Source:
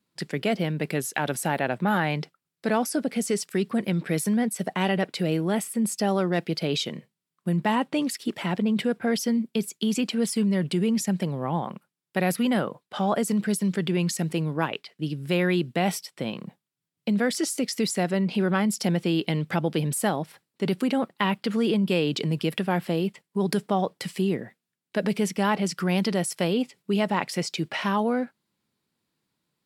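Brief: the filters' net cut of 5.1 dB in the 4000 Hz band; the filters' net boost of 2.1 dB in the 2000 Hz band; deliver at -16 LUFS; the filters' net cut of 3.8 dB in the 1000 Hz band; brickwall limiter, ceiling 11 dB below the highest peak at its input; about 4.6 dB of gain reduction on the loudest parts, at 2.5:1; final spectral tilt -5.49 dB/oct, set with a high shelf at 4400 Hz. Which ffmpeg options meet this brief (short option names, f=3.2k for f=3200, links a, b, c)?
-af "equalizer=f=1k:t=o:g=-6,equalizer=f=2k:t=o:g=7,equalizer=f=4k:t=o:g=-7,highshelf=f=4.4k:g=-6,acompressor=threshold=-27dB:ratio=2.5,volume=17.5dB,alimiter=limit=-6dB:level=0:latency=1"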